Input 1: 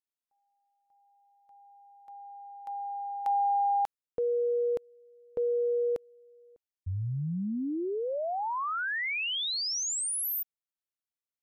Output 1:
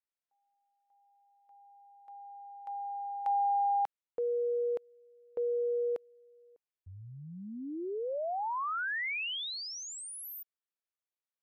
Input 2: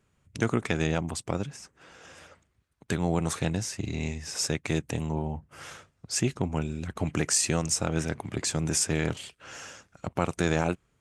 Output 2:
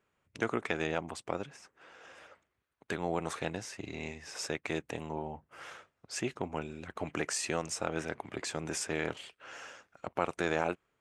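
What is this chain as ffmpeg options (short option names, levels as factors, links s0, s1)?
-af "bass=f=250:g=-14,treble=f=4000:g=-10,volume=0.794"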